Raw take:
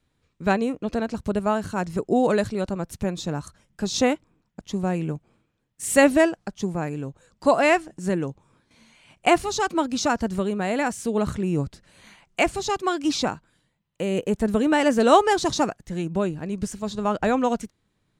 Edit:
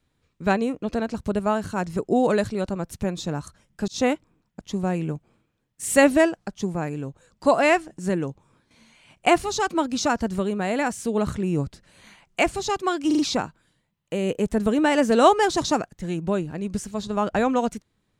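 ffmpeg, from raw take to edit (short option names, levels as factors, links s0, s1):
-filter_complex "[0:a]asplit=5[s0][s1][s2][s3][s4];[s0]atrim=end=3.88,asetpts=PTS-STARTPTS,afade=t=out:st=3.876:d=0.004:c=hsin[s5];[s1]atrim=start=3.88:end=13.112,asetpts=PTS-STARTPTS,afade=t=in:d=0.25:c=qsin[s6];[s2]atrim=start=13.068:end=13.112[s7];[s3]atrim=start=13.068:end=13.112[s8];[s4]atrim=start=13.068[s9];[s5][s6]concat=n=2:v=0:a=1[s10];[s10][s7]acrossfade=d=0.004:c1=hsin:c2=hsin[s11];[s11][s8]acrossfade=d=0.004:c1=hsin:c2=hsin[s12];[s12][s9]acrossfade=d=0.004:c1=hsin:c2=hsin"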